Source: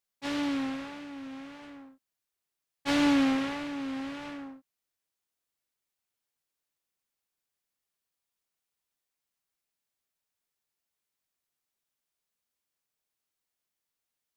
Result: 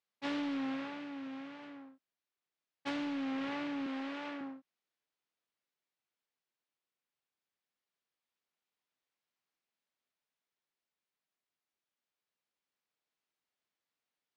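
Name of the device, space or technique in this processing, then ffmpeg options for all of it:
AM radio: -filter_complex "[0:a]asettb=1/sr,asplit=3[a][b][c];[a]atrim=end=3.864[d];[b]atrim=start=3.86:end=4.41,asetpts=PTS-STARTPTS,afade=t=in:d=0.004:c=qsin,afade=t=out:st=0.546:d=0.004:c=qsin,highpass=270[e];[c]atrim=start=4.406[f];[d][e]acrossfade=d=0.004:c1=hsin:c2=qsin[g];[g][f]acrossfade=d=0.004:c1=qsin:c2=hsin,highpass=150,lowpass=4.1k,acompressor=threshold=-31dB:ratio=10,asoftclip=type=tanh:threshold=-26.5dB,tremolo=f=0.22:d=0.26"

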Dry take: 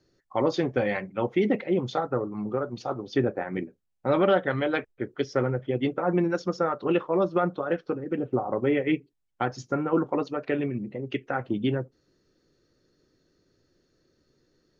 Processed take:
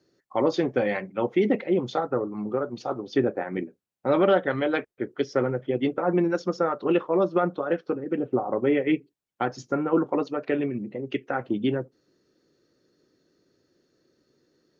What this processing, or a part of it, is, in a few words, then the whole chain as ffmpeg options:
filter by subtraction: -filter_complex "[0:a]asplit=2[a][b];[b]lowpass=280,volume=-1[c];[a][c]amix=inputs=2:normalize=0"

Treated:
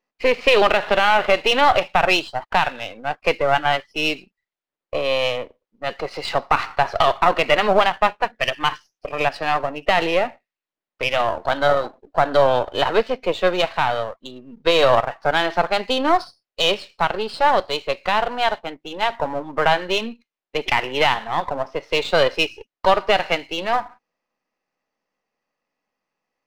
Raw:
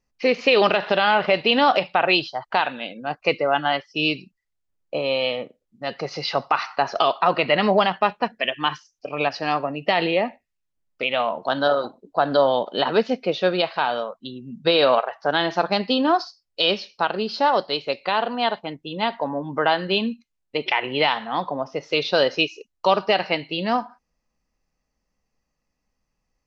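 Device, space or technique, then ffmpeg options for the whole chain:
crystal radio: -af "highpass=350,lowpass=3.5k,aeval=exprs='if(lt(val(0),0),0.447*val(0),val(0))':c=same,volume=5.5dB"

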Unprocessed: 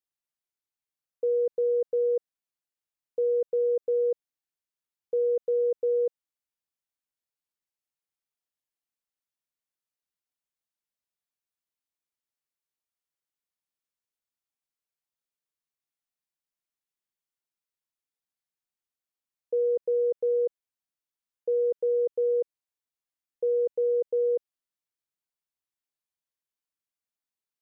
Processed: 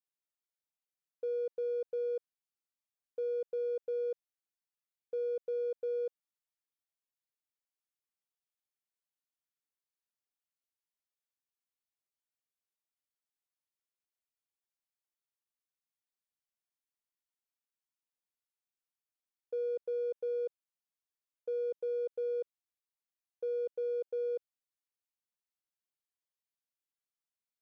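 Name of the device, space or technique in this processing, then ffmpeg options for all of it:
parallel distortion: -filter_complex "[0:a]lowshelf=f=290:g=-5.5,asplit=2[a][b];[b]asoftclip=type=hard:threshold=-37.5dB,volume=-11dB[c];[a][c]amix=inputs=2:normalize=0,volume=-8.5dB"

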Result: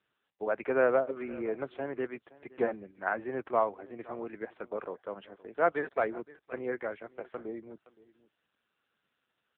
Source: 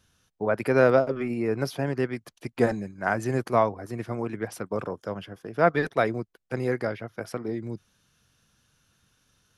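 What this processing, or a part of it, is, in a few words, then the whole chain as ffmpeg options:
satellite phone: -filter_complex "[0:a]asettb=1/sr,asplit=3[a][b][c];[a]atrim=end=4.654[d];[b]atrim=start=4.65:end=5.99,asetpts=PTS-STARTPTS,afade=t=in:d=0.004:c=qsin,afade=t=out:st=1.336:d=0.004:c=qsin,adynamicequalizer=threshold=0.0126:dfrequency=2500:dqfactor=1.3:tfrequency=2500:tqfactor=1.3:attack=5:release=100:ratio=0.375:range=2:mode=cutabove:tftype=bell[e];[c]atrim=start=5.986[f];[d][e]acrossfade=d=0.004:c1=hsin:c2=qsin[g];[g][f]acrossfade=d=0.004:c1=qsin:c2=hsin,highpass=320,lowpass=3.2k,aecho=1:1:519:0.0944,volume=-4.5dB" -ar 8000 -c:a libopencore_amrnb -b:a 6700

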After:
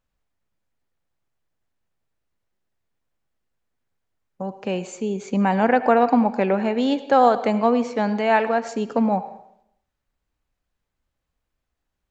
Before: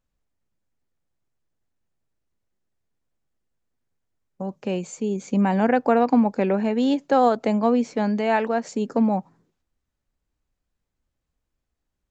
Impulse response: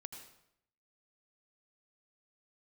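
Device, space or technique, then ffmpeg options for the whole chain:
filtered reverb send: -filter_complex "[0:a]asplit=2[a][b];[b]highpass=460,lowpass=4.8k[c];[1:a]atrim=start_sample=2205[d];[c][d]afir=irnorm=-1:irlink=0,volume=1dB[e];[a][e]amix=inputs=2:normalize=0"

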